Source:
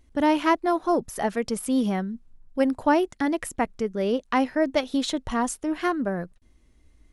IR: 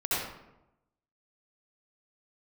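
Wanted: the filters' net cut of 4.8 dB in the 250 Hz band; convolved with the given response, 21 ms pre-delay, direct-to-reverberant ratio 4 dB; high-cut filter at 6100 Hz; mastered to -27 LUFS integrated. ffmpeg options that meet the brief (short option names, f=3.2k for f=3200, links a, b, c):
-filter_complex "[0:a]lowpass=6.1k,equalizer=f=250:t=o:g=-6,asplit=2[a][b];[1:a]atrim=start_sample=2205,adelay=21[c];[b][c]afir=irnorm=-1:irlink=0,volume=-13.5dB[d];[a][d]amix=inputs=2:normalize=0,volume=-1dB"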